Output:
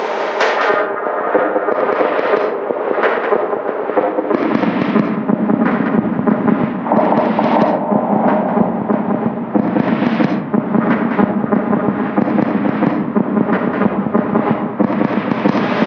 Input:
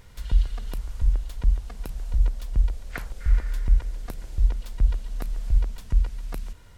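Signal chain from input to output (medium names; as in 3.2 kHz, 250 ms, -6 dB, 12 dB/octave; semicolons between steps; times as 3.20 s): bass shelf 330 Hz -5.5 dB; hum notches 50/100/150/200/250/300 Hz; loudspeakers at several distances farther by 30 m -4 dB, 69 m -10 dB, 95 m -5 dB; low-pass that closes with the level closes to 2.9 kHz, closed at -22 dBFS; compression 6:1, threshold -32 dBFS, peak gain reduction 15 dB; speed mistake 78 rpm record played at 33 rpm; high-pass 82 Hz; high-pass sweep 450 Hz -> 200 Hz, 4.12–4.68 s; ten-band graphic EQ 125 Hz +8 dB, 250 Hz +10 dB, 500 Hz +7 dB, 1 kHz +10 dB, 2 kHz +7 dB; gain riding within 5 dB 0.5 s; reverberation RT60 0.55 s, pre-delay 20 ms, DRR 5.5 dB; loudness maximiser +25 dB; trim -1 dB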